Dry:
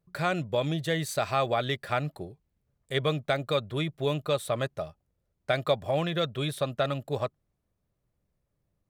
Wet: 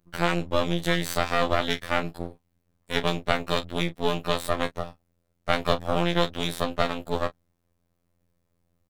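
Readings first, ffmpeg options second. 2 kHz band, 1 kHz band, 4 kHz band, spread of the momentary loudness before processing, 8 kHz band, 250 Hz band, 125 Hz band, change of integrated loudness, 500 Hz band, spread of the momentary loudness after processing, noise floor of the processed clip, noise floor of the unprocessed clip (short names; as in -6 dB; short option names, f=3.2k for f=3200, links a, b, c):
+5.0 dB, +4.0 dB, +4.5 dB, 7 LU, +3.5 dB, +4.0 dB, -0.5 dB, +2.5 dB, +1.0 dB, 7 LU, -74 dBFS, -79 dBFS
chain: -filter_complex "[0:a]afftfilt=real='hypot(re,im)*cos(PI*b)':imag='0':win_size=2048:overlap=0.75,asplit=2[a][b];[b]adelay=31,volume=-12dB[c];[a][c]amix=inputs=2:normalize=0,aeval=exprs='max(val(0),0)':c=same,volume=9dB"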